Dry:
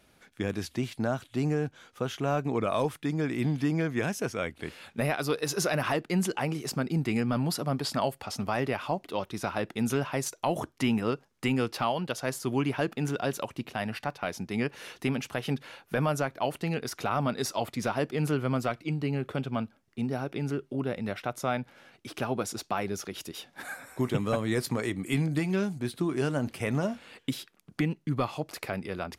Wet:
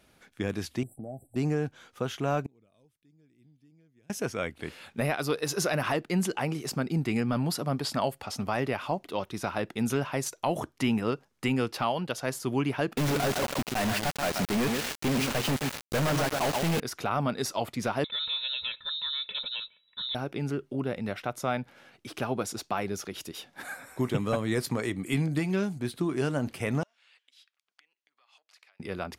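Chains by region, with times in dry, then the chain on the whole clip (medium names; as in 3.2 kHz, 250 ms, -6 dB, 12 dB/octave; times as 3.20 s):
0.83–1.36 s: brick-wall FIR band-stop 820–7600 Hz + compression 2:1, threshold -44 dBFS + doubling 15 ms -13 dB
2.46–4.10 s: peaking EQ 1.1 kHz -15 dB 2 oct + inverted gate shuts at -39 dBFS, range -31 dB
12.97–16.80 s: CVSD coder 32 kbps + tape echo 129 ms, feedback 32%, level -8 dB, low-pass 4.3 kHz + companded quantiser 2-bit
18.04–20.15 s: comb 2.4 ms, depth 88% + compression 2:1, threshold -33 dBFS + frequency inversion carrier 3.9 kHz
26.83–28.80 s: compression 20:1, threshold -41 dBFS + band-pass 600–3700 Hz + differentiator
whole clip: none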